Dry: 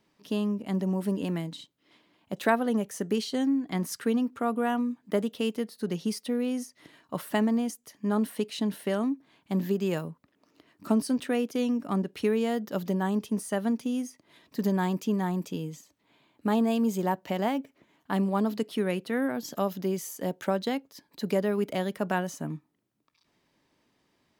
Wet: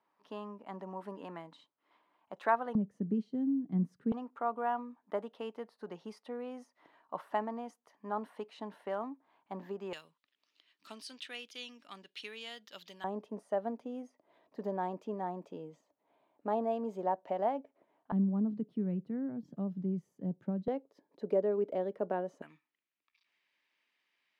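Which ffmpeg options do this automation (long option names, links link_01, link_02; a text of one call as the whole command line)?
ffmpeg -i in.wav -af "asetnsamples=nb_out_samples=441:pad=0,asendcmd='2.75 bandpass f 180;4.12 bandpass f 890;9.93 bandpass f 3400;13.04 bandpass f 660;18.12 bandpass f 160;20.68 bandpass f 490;22.42 bandpass f 2400',bandpass=frequency=990:width_type=q:width=2:csg=0" out.wav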